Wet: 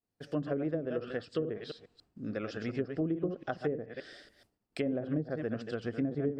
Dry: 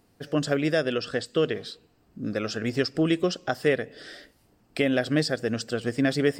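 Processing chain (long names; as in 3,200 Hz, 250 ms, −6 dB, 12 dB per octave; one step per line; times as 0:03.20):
delay that plays each chunk backwards 143 ms, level −8 dB
treble cut that deepens with the level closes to 390 Hz, closed at −18 dBFS
downward expander −52 dBFS
level −8 dB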